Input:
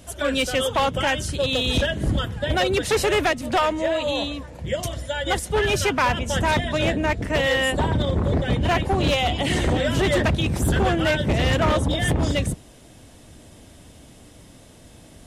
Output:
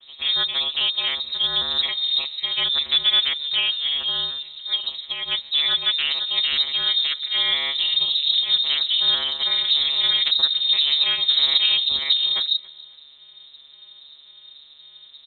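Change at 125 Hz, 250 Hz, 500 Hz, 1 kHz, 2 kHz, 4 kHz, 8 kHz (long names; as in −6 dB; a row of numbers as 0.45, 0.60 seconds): below −25 dB, below −25 dB, −21.5 dB, −13.5 dB, −5.5 dB, +12.0 dB, below −40 dB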